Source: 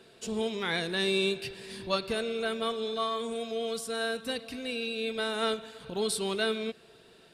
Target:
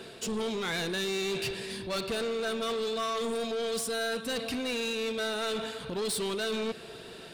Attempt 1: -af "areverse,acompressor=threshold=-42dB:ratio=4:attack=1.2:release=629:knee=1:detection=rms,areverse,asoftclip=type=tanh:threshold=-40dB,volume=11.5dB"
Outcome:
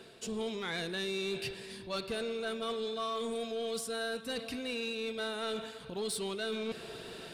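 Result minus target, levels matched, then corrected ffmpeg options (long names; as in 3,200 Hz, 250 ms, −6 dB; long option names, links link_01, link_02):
downward compressor: peak gain reduction +8.5 dB
-af "areverse,acompressor=threshold=-30.5dB:ratio=4:attack=1.2:release=629:knee=1:detection=rms,areverse,asoftclip=type=tanh:threshold=-40dB,volume=11.5dB"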